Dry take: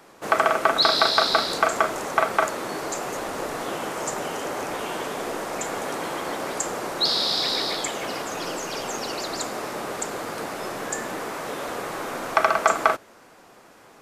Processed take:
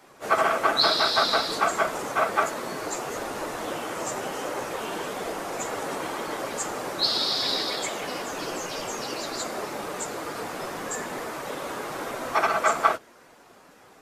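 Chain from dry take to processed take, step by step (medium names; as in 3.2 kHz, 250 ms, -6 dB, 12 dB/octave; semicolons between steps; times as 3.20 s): phase randomisation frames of 50 ms; trim -2 dB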